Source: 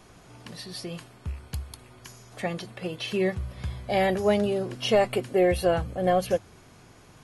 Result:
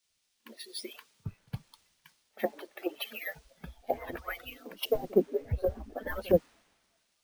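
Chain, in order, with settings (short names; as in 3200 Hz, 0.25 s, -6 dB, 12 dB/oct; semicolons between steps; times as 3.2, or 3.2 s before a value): median-filter separation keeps percussive; spectral noise reduction 18 dB; low-pass opened by the level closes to 1800 Hz, open at -28 dBFS; pre-echo 62 ms -23 dB; treble ducked by the level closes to 380 Hz, closed at -28.5 dBFS; in parallel at -11 dB: requantised 8-bit, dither triangular; on the sum: careless resampling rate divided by 3×, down filtered, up hold; three-band expander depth 70%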